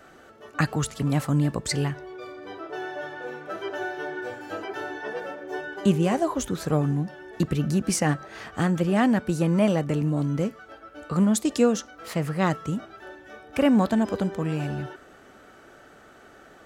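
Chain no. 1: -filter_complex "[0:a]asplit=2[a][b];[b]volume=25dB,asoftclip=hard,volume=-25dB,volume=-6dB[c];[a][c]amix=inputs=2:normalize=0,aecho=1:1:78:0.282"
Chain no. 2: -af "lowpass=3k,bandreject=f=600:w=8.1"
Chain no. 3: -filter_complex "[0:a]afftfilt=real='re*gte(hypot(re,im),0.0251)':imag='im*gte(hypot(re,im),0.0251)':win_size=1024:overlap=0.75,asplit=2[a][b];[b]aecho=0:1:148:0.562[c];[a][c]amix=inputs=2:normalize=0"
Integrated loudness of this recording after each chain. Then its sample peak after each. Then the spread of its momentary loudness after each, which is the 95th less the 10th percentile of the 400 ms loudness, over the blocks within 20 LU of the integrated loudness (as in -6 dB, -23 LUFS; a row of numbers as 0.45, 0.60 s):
-23.5, -26.5, -25.0 LUFS; -7.5, -9.0, -8.0 dBFS; 13, 15, 14 LU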